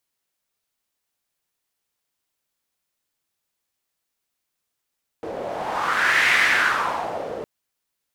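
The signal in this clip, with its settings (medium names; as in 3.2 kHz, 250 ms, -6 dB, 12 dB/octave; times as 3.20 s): wind-like swept noise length 2.21 s, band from 510 Hz, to 2 kHz, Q 3.6, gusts 1, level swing 13 dB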